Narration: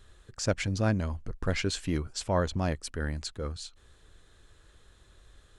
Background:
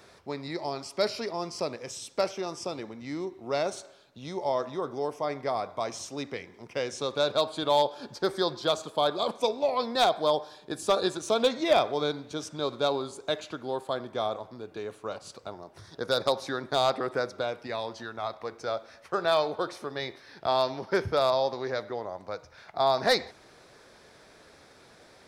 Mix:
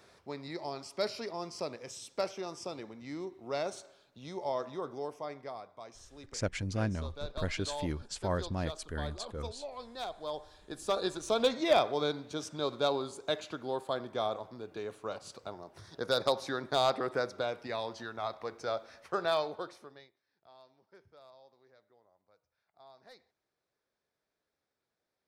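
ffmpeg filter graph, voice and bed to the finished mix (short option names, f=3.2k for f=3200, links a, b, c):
-filter_complex "[0:a]adelay=5950,volume=-5.5dB[a];[1:a]volume=7.5dB,afade=t=out:st=4.85:d=0.84:silence=0.298538,afade=t=in:st=10.14:d=1.4:silence=0.211349,afade=t=out:st=19.05:d=1.05:silence=0.0334965[b];[a][b]amix=inputs=2:normalize=0"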